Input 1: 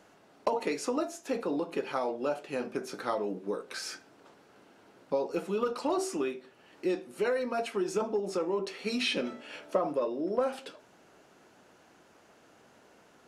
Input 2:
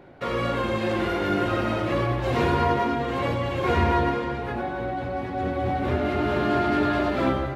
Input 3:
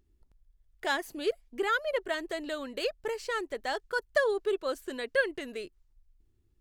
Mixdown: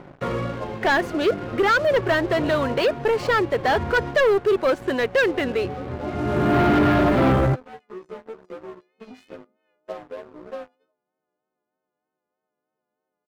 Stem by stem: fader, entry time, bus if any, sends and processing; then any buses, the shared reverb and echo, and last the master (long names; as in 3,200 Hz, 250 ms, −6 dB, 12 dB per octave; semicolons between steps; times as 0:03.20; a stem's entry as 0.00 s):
−16.0 dB, 0.15 s, no send, every partial snapped to a pitch grid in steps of 3 semitones; resonant band-pass 500 Hz, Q 0.67; pitch vibrato 3.2 Hz 40 cents
−1.5 dB, 0.00 s, no send, automatic ducking −18 dB, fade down 0.65 s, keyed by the third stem
−1.0 dB, 0.00 s, no send, mid-hump overdrive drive 16 dB, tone 3,100 Hz, clips at −14 dBFS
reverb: not used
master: low-pass filter 1,700 Hz 6 dB per octave; parametric band 150 Hz +7.5 dB 0.83 octaves; leveller curve on the samples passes 3